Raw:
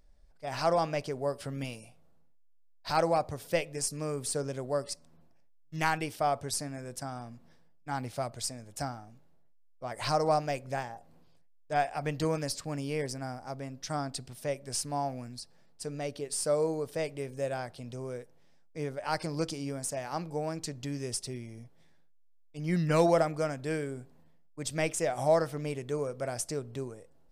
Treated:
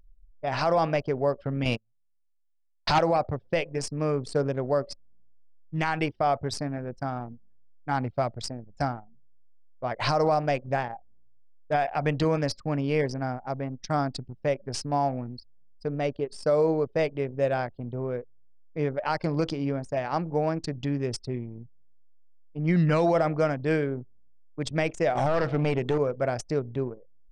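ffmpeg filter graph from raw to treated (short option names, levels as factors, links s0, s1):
-filter_complex "[0:a]asettb=1/sr,asplit=3[s0][s1][s2];[s0]atrim=end=1.654[s3];[s1]atrim=start=1.65:end=2.99,asetpts=PTS-STARTPTS,afade=t=in:d=0.004:c=qsin,afade=t=out:st=1.336:d=0.004:c=qsin,agate=range=0.0355:threshold=0.00631:ratio=16:release=100:detection=peak,aeval=exprs='0.2*sin(PI/2*2.24*val(0)/0.2)':c=same[s4];[s2]atrim=start=2.986[s5];[s3][s4]acrossfade=d=0.004:c1=hsin:c2=qsin[s6];[s6][s5]acrossfade=d=0.004:c1=qsin:c2=hsin,asettb=1/sr,asplit=3[s7][s8][s9];[s7]atrim=end=25.154[s10];[s8]atrim=start=25.15:end=25.98,asetpts=PTS-STARTPTS,afade=t=in:d=0.004:c=qsin,afade=t=out:st=0.826:d=0.004:c=qsin,bandreject=f=60:t=h:w=6,bandreject=f=120:t=h:w=6,bandreject=f=180:t=h:w=6,acontrast=33,aeval=exprs='clip(val(0),-1,0.0299)':c=same[s11];[s9]atrim=start=25.976[s12];[s10][s11]acrossfade=d=0.004:c1=hsin:c2=qsin[s13];[s13][s12]acrossfade=d=0.004:c1=qsin:c2=hsin,lowpass=4200,anlmdn=0.251,alimiter=limit=0.0708:level=0:latency=1:release=62,volume=2.51"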